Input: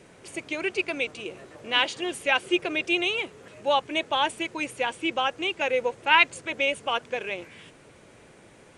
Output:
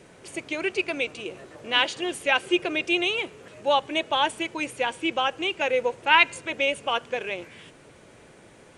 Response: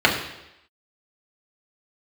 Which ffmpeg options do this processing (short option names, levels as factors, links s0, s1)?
-filter_complex "[0:a]asplit=2[s0][s1];[1:a]atrim=start_sample=2205[s2];[s1][s2]afir=irnorm=-1:irlink=0,volume=0.00841[s3];[s0][s3]amix=inputs=2:normalize=0,volume=1.12"